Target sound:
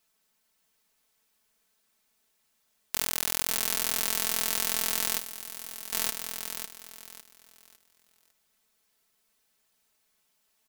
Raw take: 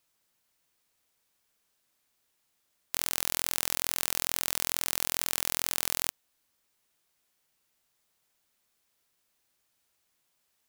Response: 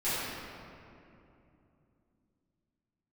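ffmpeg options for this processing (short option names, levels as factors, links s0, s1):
-filter_complex "[0:a]aecho=1:1:4.6:0.74,asplit=2[s0][s1];[s1]aecho=0:1:553|1106|1659|2212:0.422|0.127|0.038|0.0114[s2];[s0][s2]amix=inputs=2:normalize=0,asettb=1/sr,asplit=3[s3][s4][s5];[s3]atrim=end=5.184[s6];[s4]atrim=start=5.18:end=5.93,asetpts=PTS-STARTPTS,afade=t=in:d=0.004:c=qsin,afade=t=out:st=0.746:d=0.004:c=qsin,acrossover=split=1900|7200[s7][s8][s9];[s7]acompressor=threshold=0.00316:ratio=4[s10];[s8]acompressor=threshold=0.00501:ratio=4[s11];[s9]acompressor=threshold=0.0158:ratio=4[s12];[s10][s11][s12]amix=inputs=3:normalize=0[s13];[s5]atrim=start=5.926[s14];[s6][s13]acrossfade=d=0.004:c1=hsin:c2=qsin[s15];[s15][s14]acrossfade=d=0.004:c1=qsin:c2=hsin"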